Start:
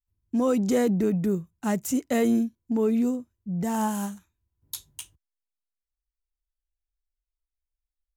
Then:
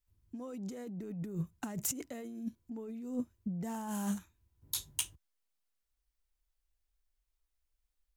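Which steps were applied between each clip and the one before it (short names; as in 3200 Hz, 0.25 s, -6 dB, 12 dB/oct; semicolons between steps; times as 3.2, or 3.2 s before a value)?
negative-ratio compressor -35 dBFS, ratio -1; gain -4.5 dB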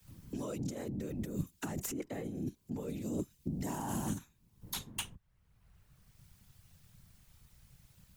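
whisperiser; three-band squash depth 70%; gain +1 dB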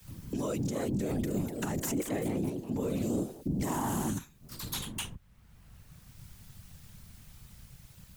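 limiter -33 dBFS, peak gain reduction 9.5 dB; echoes that change speed 0.382 s, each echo +2 st, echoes 3, each echo -6 dB; gain +8.5 dB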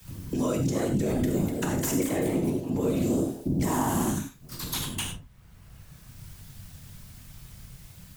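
reverb, pre-delay 3 ms, DRR 3 dB; gain +4 dB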